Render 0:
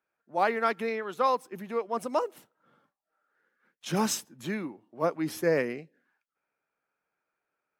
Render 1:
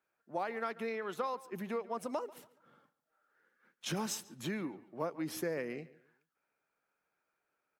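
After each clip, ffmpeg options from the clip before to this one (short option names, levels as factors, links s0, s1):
-filter_complex "[0:a]acompressor=threshold=0.02:ratio=6,asplit=2[s0][s1];[s1]adelay=141,lowpass=f=4100:p=1,volume=0.112,asplit=2[s2][s3];[s3]adelay=141,lowpass=f=4100:p=1,volume=0.33,asplit=2[s4][s5];[s5]adelay=141,lowpass=f=4100:p=1,volume=0.33[s6];[s0][s2][s4][s6]amix=inputs=4:normalize=0"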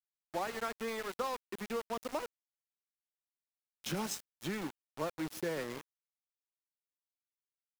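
-filter_complex "[0:a]acrossover=split=370|1700[s0][s1][s2];[s0]acompressor=mode=upward:threshold=0.00708:ratio=2.5[s3];[s3][s1][s2]amix=inputs=3:normalize=0,aeval=exprs='val(0)*gte(abs(val(0)),0.0119)':c=same"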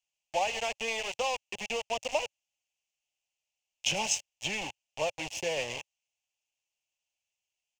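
-af "firequalizer=gain_entry='entry(110,0);entry(160,-9);entry(330,-13);entry(560,3);entry(830,4);entry(1300,-16);entry(2700,15);entry(3800,-1);entry(6500,9);entry(11000,-14)':delay=0.05:min_phase=1,volume=1.88"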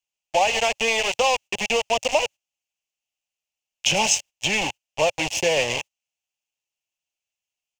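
-filter_complex "[0:a]agate=range=0.224:threshold=0.00501:ratio=16:detection=peak,asplit=2[s0][s1];[s1]alimiter=level_in=1.06:limit=0.0631:level=0:latency=1:release=103,volume=0.944,volume=1.19[s2];[s0][s2]amix=inputs=2:normalize=0,volume=1.88"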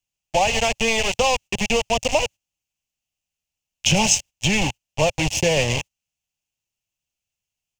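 -af "bass=f=250:g=15,treble=f=4000:g=3"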